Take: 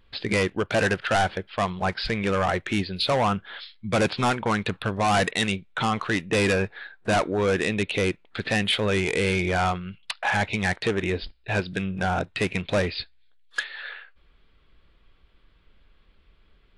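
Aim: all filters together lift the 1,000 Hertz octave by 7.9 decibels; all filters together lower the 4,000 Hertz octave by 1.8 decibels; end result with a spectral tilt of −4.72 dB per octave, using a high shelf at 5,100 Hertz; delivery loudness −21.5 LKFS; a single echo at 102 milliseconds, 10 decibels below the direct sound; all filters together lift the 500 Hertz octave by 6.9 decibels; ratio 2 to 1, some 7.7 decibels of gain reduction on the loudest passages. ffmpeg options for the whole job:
ffmpeg -i in.wav -af "equalizer=frequency=500:width_type=o:gain=6,equalizer=frequency=1000:width_type=o:gain=8.5,equalizer=frequency=4000:width_type=o:gain=-6.5,highshelf=frequency=5100:gain=8.5,acompressor=threshold=-26dB:ratio=2,aecho=1:1:102:0.316,volume=5dB" out.wav

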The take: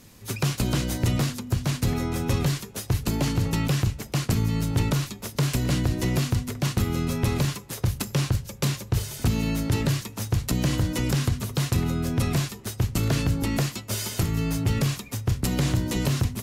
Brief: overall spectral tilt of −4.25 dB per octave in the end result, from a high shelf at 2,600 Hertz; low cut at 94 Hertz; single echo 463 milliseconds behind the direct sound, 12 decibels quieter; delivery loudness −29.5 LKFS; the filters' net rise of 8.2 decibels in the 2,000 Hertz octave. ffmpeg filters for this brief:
ffmpeg -i in.wav -af "highpass=94,equalizer=frequency=2000:width_type=o:gain=8,highshelf=frequency=2600:gain=4.5,aecho=1:1:463:0.251,volume=-4.5dB" out.wav

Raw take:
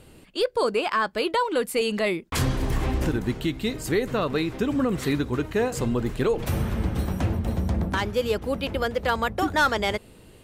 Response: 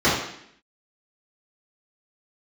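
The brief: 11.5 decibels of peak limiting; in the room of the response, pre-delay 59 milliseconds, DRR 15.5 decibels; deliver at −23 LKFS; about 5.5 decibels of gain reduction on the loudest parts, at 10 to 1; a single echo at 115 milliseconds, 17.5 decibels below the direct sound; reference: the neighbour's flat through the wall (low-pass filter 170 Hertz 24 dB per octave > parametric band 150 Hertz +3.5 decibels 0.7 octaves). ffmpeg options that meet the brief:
-filter_complex "[0:a]acompressor=threshold=-24dB:ratio=10,alimiter=level_in=3dB:limit=-24dB:level=0:latency=1,volume=-3dB,aecho=1:1:115:0.133,asplit=2[link_01][link_02];[1:a]atrim=start_sample=2205,adelay=59[link_03];[link_02][link_03]afir=irnorm=-1:irlink=0,volume=-36.5dB[link_04];[link_01][link_04]amix=inputs=2:normalize=0,lowpass=frequency=170:width=0.5412,lowpass=frequency=170:width=1.3066,equalizer=frequency=150:width_type=o:width=0.7:gain=3.5,volume=16.5dB"

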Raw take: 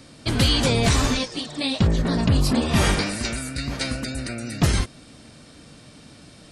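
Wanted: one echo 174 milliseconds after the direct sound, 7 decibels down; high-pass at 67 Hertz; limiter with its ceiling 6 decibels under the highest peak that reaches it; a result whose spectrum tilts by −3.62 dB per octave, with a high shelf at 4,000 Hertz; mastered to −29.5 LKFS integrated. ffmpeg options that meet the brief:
ffmpeg -i in.wav -af "highpass=67,highshelf=frequency=4000:gain=7,alimiter=limit=-12dB:level=0:latency=1,aecho=1:1:174:0.447,volume=-7dB" out.wav

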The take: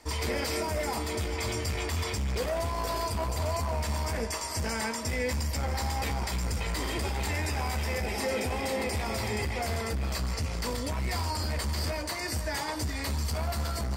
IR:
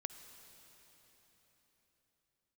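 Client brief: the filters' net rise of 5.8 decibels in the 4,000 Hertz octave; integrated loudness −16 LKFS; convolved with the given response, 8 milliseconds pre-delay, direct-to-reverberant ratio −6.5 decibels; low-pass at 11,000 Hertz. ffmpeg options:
-filter_complex "[0:a]lowpass=11000,equalizer=frequency=4000:width_type=o:gain=7.5,asplit=2[link_01][link_02];[1:a]atrim=start_sample=2205,adelay=8[link_03];[link_02][link_03]afir=irnorm=-1:irlink=0,volume=9dB[link_04];[link_01][link_04]amix=inputs=2:normalize=0,volume=7dB"

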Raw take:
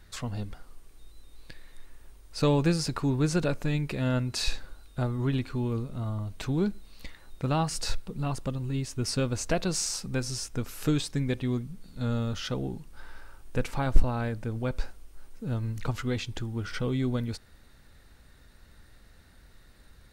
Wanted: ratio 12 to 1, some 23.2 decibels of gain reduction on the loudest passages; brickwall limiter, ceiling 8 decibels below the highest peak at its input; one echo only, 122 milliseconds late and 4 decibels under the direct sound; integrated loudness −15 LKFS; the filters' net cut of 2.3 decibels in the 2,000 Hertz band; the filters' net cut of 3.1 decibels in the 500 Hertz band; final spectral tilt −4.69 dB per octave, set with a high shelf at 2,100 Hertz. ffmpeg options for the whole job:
ffmpeg -i in.wav -af "equalizer=frequency=500:width_type=o:gain=-4,equalizer=frequency=2000:width_type=o:gain=-6.5,highshelf=frequency=2100:gain=5.5,acompressor=threshold=-33dB:ratio=12,alimiter=level_in=6dB:limit=-24dB:level=0:latency=1,volume=-6dB,aecho=1:1:122:0.631,volume=24dB" out.wav

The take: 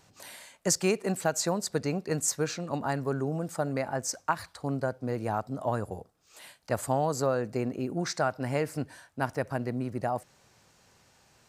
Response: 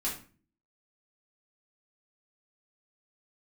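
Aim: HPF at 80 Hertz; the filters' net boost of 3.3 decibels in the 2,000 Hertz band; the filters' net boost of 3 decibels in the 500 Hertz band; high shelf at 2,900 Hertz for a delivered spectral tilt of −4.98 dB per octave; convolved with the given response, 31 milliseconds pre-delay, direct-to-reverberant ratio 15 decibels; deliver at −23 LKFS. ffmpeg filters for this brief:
-filter_complex "[0:a]highpass=80,equalizer=frequency=500:width_type=o:gain=3.5,equalizer=frequency=2000:width_type=o:gain=5.5,highshelf=frequency=2900:gain=-3.5,asplit=2[link_01][link_02];[1:a]atrim=start_sample=2205,adelay=31[link_03];[link_02][link_03]afir=irnorm=-1:irlink=0,volume=-19.5dB[link_04];[link_01][link_04]amix=inputs=2:normalize=0,volume=6.5dB"

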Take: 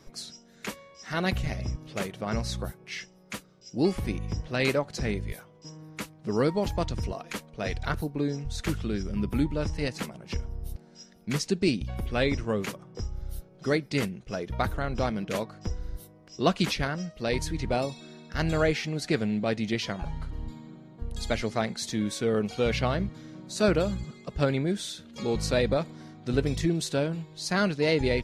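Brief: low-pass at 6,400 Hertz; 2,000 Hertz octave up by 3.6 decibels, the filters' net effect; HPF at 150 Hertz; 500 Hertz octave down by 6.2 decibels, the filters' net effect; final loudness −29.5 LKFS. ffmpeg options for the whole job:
ffmpeg -i in.wav -af "highpass=150,lowpass=6400,equalizer=frequency=500:width_type=o:gain=-8,equalizer=frequency=2000:width_type=o:gain=5,volume=2dB" out.wav

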